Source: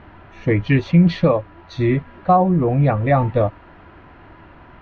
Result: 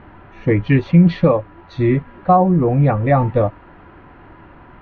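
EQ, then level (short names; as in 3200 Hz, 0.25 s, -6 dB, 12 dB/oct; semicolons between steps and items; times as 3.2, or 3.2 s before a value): LPF 2100 Hz 6 dB/oct; bell 75 Hz -3.5 dB 0.79 oct; notch 650 Hz, Q 13; +2.5 dB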